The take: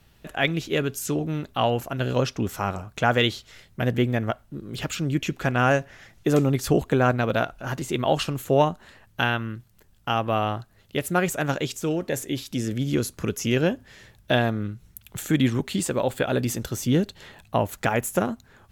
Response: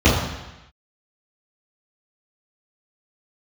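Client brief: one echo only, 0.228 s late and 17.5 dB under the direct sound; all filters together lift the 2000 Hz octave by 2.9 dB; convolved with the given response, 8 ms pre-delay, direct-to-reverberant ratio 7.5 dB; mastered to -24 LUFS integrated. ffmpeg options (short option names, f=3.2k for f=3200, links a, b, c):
-filter_complex "[0:a]equalizer=f=2k:t=o:g=4,aecho=1:1:228:0.133,asplit=2[a][b];[1:a]atrim=start_sample=2205,adelay=8[c];[b][c]afir=irnorm=-1:irlink=0,volume=-31dB[d];[a][d]amix=inputs=2:normalize=0,volume=-2dB"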